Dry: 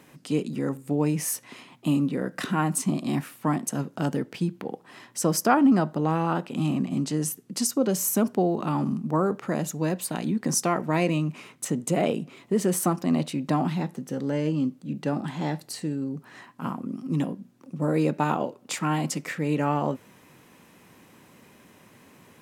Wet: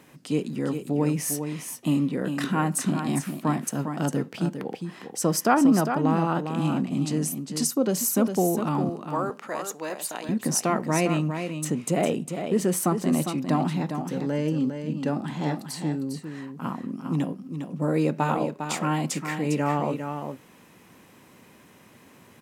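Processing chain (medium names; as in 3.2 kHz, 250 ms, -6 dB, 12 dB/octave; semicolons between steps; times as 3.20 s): 8.89–10.29 s: high-pass 550 Hz 12 dB/octave; delay 404 ms -7.5 dB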